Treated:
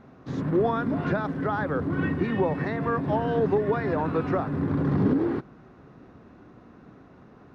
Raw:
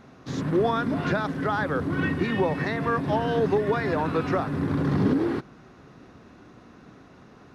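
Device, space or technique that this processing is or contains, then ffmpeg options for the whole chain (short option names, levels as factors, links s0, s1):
through cloth: -af "highshelf=f=2800:g=-14.5"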